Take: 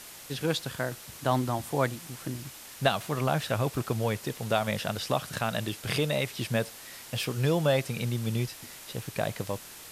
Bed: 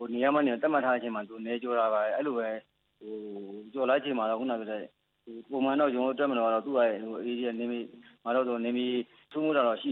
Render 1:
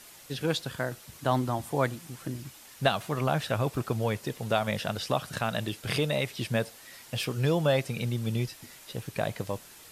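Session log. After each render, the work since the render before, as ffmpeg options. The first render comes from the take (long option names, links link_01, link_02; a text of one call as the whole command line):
ffmpeg -i in.wav -af "afftdn=noise_reduction=6:noise_floor=-47" out.wav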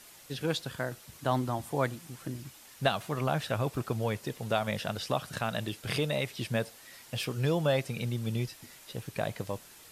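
ffmpeg -i in.wav -af "volume=-2.5dB" out.wav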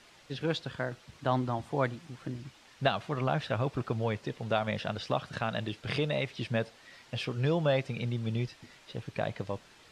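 ffmpeg -i in.wav -af "lowpass=4300" out.wav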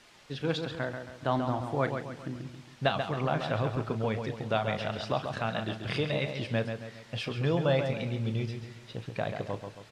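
ffmpeg -i in.wav -filter_complex "[0:a]asplit=2[link_01][link_02];[link_02]adelay=36,volume=-13dB[link_03];[link_01][link_03]amix=inputs=2:normalize=0,asplit=2[link_04][link_05];[link_05]adelay=136,lowpass=frequency=4100:poles=1,volume=-6.5dB,asplit=2[link_06][link_07];[link_07]adelay=136,lowpass=frequency=4100:poles=1,volume=0.44,asplit=2[link_08][link_09];[link_09]adelay=136,lowpass=frequency=4100:poles=1,volume=0.44,asplit=2[link_10][link_11];[link_11]adelay=136,lowpass=frequency=4100:poles=1,volume=0.44,asplit=2[link_12][link_13];[link_13]adelay=136,lowpass=frequency=4100:poles=1,volume=0.44[link_14];[link_06][link_08][link_10][link_12][link_14]amix=inputs=5:normalize=0[link_15];[link_04][link_15]amix=inputs=2:normalize=0" out.wav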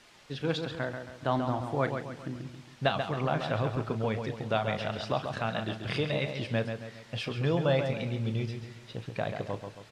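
ffmpeg -i in.wav -af anull out.wav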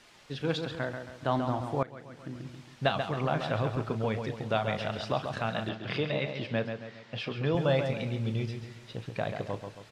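ffmpeg -i in.wav -filter_complex "[0:a]asettb=1/sr,asplit=3[link_01][link_02][link_03];[link_01]atrim=end=5.694[link_04];[link_02]atrim=start=5.69:end=7.55,asetpts=PTS-STARTPTS,afade=type=in:duration=0.004:curve=qsin,afade=type=out:start_time=1.856:duration=0.004:curve=qsin,highpass=120,lowpass=4500[link_05];[link_03]atrim=start=7.546[link_06];[link_04][link_05]acrossfade=duration=0.004:curve1=hsin:curve2=qsin[link_07];[link_07][link_06]acrossfade=duration=0.004:curve1=qsin:curve2=hsin,asplit=2[link_08][link_09];[link_08]atrim=end=1.83,asetpts=PTS-STARTPTS,afade=type=out:start_time=1.826:duration=0.004:curve=hsin:silence=0.1[link_10];[link_09]atrim=start=1.83,asetpts=PTS-STARTPTS,afade=type=in:duration=0.7:silence=0.1[link_11];[link_10][link_11]concat=n=2:v=0:a=1" out.wav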